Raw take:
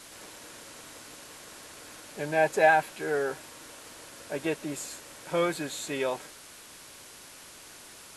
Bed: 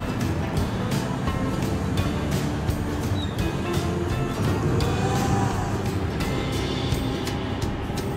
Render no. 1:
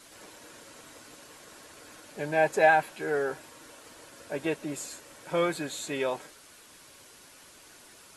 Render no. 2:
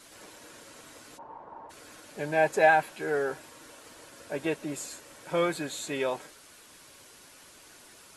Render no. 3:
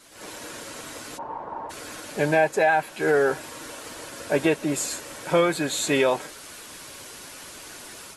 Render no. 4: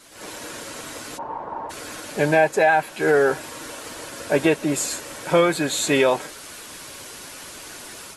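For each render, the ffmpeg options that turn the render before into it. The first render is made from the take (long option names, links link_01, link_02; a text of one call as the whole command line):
ffmpeg -i in.wav -af "afftdn=noise_reduction=6:noise_floor=-49" out.wav
ffmpeg -i in.wav -filter_complex "[0:a]asplit=3[link_01][link_02][link_03];[link_01]afade=type=out:start_time=1.17:duration=0.02[link_04];[link_02]lowpass=frequency=900:width_type=q:width=8.4,afade=type=in:start_time=1.17:duration=0.02,afade=type=out:start_time=1.69:duration=0.02[link_05];[link_03]afade=type=in:start_time=1.69:duration=0.02[link_06];[link_04][link_05][link_06]amix=inputs=3:normalize=0" out.wav
ffmpeg -i in.wav -af "dynaudnorm=framelen=140:gausssize=3:maxgain=11.5dB,alimiter=limit=-10dB:level=0:latency=1:release=433" out.wav
ffmpeg -i in.wav -af "volume=3dB" out.wav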